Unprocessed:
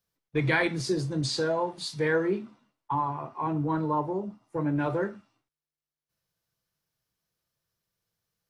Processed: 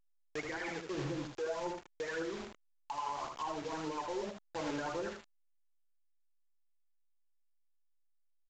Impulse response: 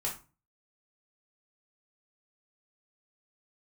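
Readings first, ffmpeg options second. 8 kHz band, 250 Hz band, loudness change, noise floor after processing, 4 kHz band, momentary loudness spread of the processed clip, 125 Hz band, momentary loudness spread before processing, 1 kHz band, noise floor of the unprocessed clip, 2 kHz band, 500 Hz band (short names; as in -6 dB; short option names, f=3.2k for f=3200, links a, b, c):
-9.0 dB, -12.5 dB, -11.0 dB, -72 dBFS, -11.0 dB, 6 LU, -17.0 dB, 8 LU, -9.0 dB, under -85 dBFS, -11.5 dB, -10.0 dB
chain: -filter_complex "[0:a]lowpass=f=2k:w=0.5412,lowpass=f=2k:w=1.3066,agate=range=-33dB:threshold=-54dB:ratio=3:detection=peak,highpass=370,areverse,acompressor=threshold=-39dB:ratio=6,areverse,asoftclip=type=hard:threshold=-37dB,aphaser=in_gain=1:out_gain=1:delay=2.5:decay=0.64:speed=1.8:type=triangular,acrusher=bits=7:mix=0:aa=0.000001,alimiter=level_in=15.5dB:limit=-24dB:level=0:latency=1:release=476,volume=-15.5dB,asplit=2[a][b];[b]aecho=0:1:77:0.531[c];[a][c]amix=inputs=2:normalize=0,volume=8.5dB" -ar 16000 -c:a pcm_alaw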